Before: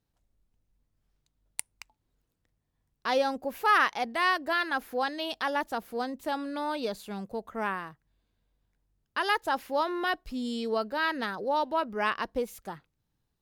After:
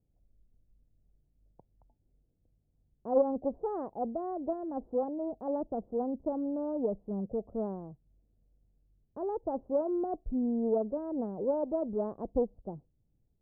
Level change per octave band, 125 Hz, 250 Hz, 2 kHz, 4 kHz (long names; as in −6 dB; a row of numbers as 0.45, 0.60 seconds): +3.5 dB, +2.5 dB, below −35 dB, below −40 dB